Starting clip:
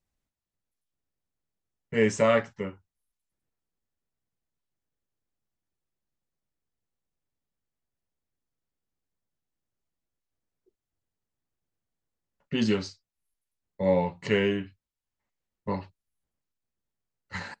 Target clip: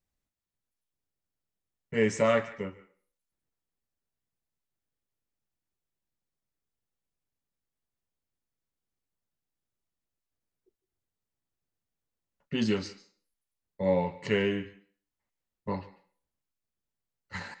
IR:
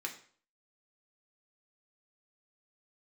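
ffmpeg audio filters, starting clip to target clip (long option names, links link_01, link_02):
-filter_complex "[0:a]asplit=2[link_01][link_02];[1:a]atrim=start_sample=2205,lowshelf=frequency=300:gain=-10,adelay=144[link_03];[link_02][link_03]afir=irnorm=-1:irlink=0,volume=-15.5dB[link_04];[link_01][link_04]amix=inputs=2:normalize=0,volume=-2.5dB"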